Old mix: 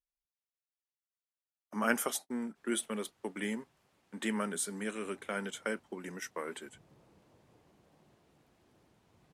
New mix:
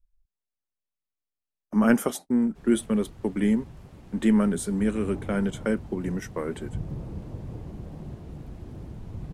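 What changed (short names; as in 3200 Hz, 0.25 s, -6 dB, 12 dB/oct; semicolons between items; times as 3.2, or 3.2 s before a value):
background +11.0 dB; master: remove HPF 1300 Hz 6 dB/oct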